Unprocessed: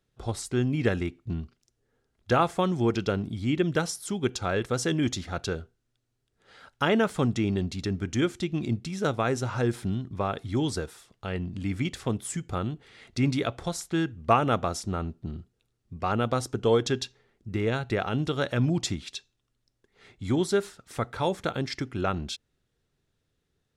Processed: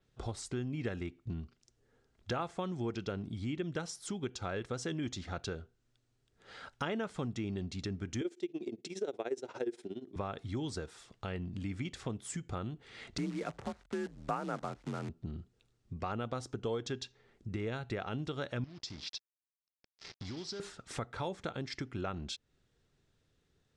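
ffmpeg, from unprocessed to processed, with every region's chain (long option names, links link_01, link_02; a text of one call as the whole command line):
ffmpeg -i in.wav -filter_complex "[0:a]asettb=1/sr,asplit=3[link_01][link_02][link_03];[link_01]atrim=end=8.214[link_04];[link_02]atrim=start=8.21:end=10.16,asetpts=PTS-STARTPTS,afade=type=in:duration=0.004:curve=qsin,afade=type=out:start_time=1.946:duration=0.004:curve=qsin,equalizer=frequency=1200:width=2.3:gain=-8.5,tremolo=f=17:d=0.86,highpass=frequency=380:width_type=q:width=3.4[link_05];[link_03]atrim=start=10.156[link_06];[link_04][link_05]acrossfade=duration=0.004:curve1=hsin:curve2=qsin[link_07];[link_07][link_06]acrossfade=duration=0.004:curve1=qsin:curve2=hsin,asettb=1/sr,asplit=3[link_08][link_09][link_10];[link_08]atrim=end=13.184[link_11];[link_09]atrim=start=13.18:end=15.09,asetpts=PTS-STARTPTS,afade=type=in:duration=0.004:curve=qsin,afade=type=out:start_time=1.906:duration=0.004:curve=qsin,lowpass=frequency=2200:width=0.5412,lowpass=frequency=2200:width=1.3066,acrusher=bits=7:dc=4:mix=0:aa=0.000001,afreqshift=43[link_12];[link_10]atrim=start=15.086[link_13];[link_11][link_12]acrossfade=duration=0.004:curve1=hsin:curve2=qsin[link_14];[link_14][link_13]acrossfade=duration=0.004:curve1=qsin:curve2=hsin,asettb=1/sr,asplit=3[link_15][link_16][link_17];[link_15]atrim=end=18.644[link_18];[link_16]atrim=start=18.64:end=20.6,asetpts=PTS-STARTPTS,afade=type=in:duration=0.004:curve=qsin,afade=type=out:start_time=1.956:duration=0.004:curve=qsin,acompressor=threshold=-44dB:ratio=3:attack=3.2:release=140:knee=1:detection=peak,acrusher=bits=7:mix=0:aa=0.5,lowpass=frequency=5100:width_type=q:width=4.8[link_19];[link_17]atrim=start=20.596[link_20];[link_18][link_19]acrossfade=duration=0.004:curve1=hsin:curve2=qsin[link_21];[link_21][link_20]acrossfade=duration=0.004:curve1=qsin:curve2=hsin,lowpass=frequency=8800:width=0.5412,lowpass=frequency=8800:width=1.3066,acompressor=threshold=-43dB:ratio=2.5,adynamicequalizer=threshold=0.00141:dfrequency=5900:dqfactor=0.7:tfrequency=5900:tqfactor=0.7:attack=5:release=100:ratio=0.375:range=1.5:mode=cutabove:tftype=highshelf,volume=2dB" out.wav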